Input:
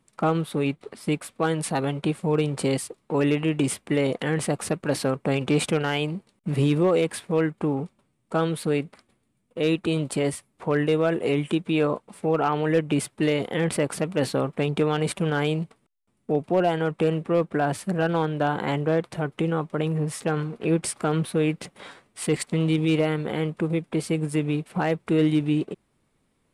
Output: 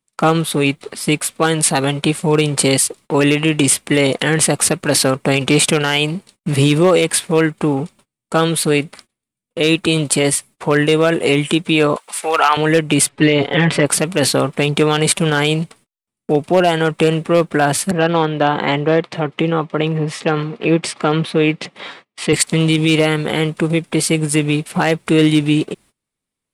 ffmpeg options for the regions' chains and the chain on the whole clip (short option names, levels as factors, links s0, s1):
-filter_complex "[0:a]asettb=1/sr,asplit=3[s0][s1][s2];[s0]atrim=end=11.964[s3];[s1]atrim=start=11.96:end=12.57,asetpts=PTS-STARTPTS,afade=t=in:d=0.004:c=qsin,afade=t=out:st=0.606:d=0.004:c=qsin,highpass=930,acontrast=63[s4];[s2]atrim=start=12.566[s5];[s3][s4]acrossfade=d=0.004:c1=hsin:c2=qsin[s6];[s6][s5]acrossfade=d=0.004:c1=qsin:c2=hsin,asettb=1/sr,asplit=3[s7][s8][s9];[s7]atrim=end=13.094[s10];[s8]atrim=start=13.09:end=13.86,asetpts=PTS-STARTPTS,afade=t=in:d=0.004:c=qsin,afade=t=out:st=0.766:d=0.004:c=qsin,lowpass=3300,aecho=1:1:7.1:0.76,atrim=end_sample=33957[s11];[s9]atrim=start=13.856[s12];[s10][s11]acrossfade=d=0.004:c1=hsin:c2=qsin[s13];[s13][s12]acrossfade=d=0.004:c1=qsin:c2=hsin,asettb=1/sr,asplit=3[s14][s15][s16];[s14]atrim=end=17.914[s17];[s15]atrim=start=17.91:end=22.33,asetpts=PTS-STARTPTS,afade=t=in:d=0.004:c=qsin,afade=t=out:st=4.416:d=0.004:c=qsin,highpass=140,lowpass=3500,bandreject=f=1500:w=11[s18];[s16]atrim=start=22.326[s19];[s17][s18]acrossfade=d=0.004:c1=hsin:c2=qsin[s20];[s20][s19]acrossfade=d=0.004:c1=qsin:c2=hsin,agate=range=0.0631:threshold=0.00251:ratio=16:detection=peak,highshelf=f=2200:g=12,alimiter=level_in=2.82:limit=0.891:release=50:level=0:latency=1,volume=0.891"